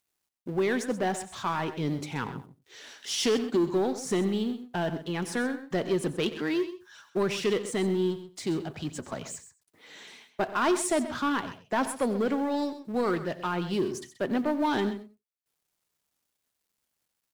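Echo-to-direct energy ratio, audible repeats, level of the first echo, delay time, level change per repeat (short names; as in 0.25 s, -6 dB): -11.5 dB, 3, -16.5 dB, 90 ms, no steady repeat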